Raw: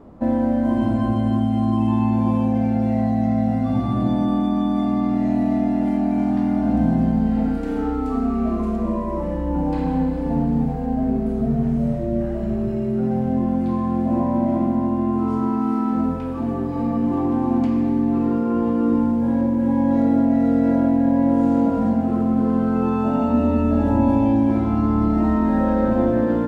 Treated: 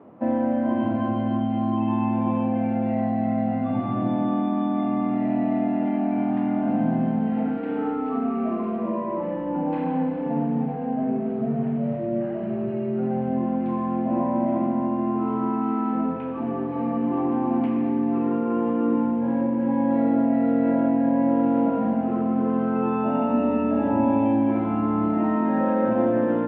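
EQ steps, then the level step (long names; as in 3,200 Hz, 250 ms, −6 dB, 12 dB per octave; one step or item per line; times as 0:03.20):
elliptic band-pass filter 110–2,800 Hz, stop band 50 dB
low-shelf EQ 150 Hz −11 dB
0.0 dB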